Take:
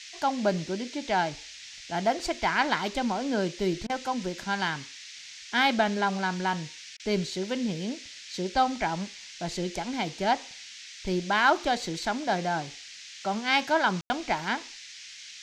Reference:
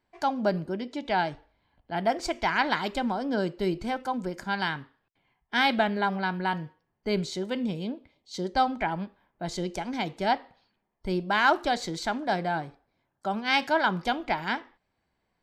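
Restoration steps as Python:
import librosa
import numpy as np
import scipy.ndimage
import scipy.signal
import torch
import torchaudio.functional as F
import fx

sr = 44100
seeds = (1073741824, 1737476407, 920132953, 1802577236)

y = fx.fix_ambience(x, sr, seeds[0], print_start_s=14.75, print_end_s=15.25, start_s=14.01, end_s=14.1)
y = fx.fix_interpolate(y, sr, at_s=(3.87, 6.97), length_ms=25.0)
y = fx.noise_reduce(y, sr, print_start_s=14.75, print_end_s=15.25, reduce_db=30.0)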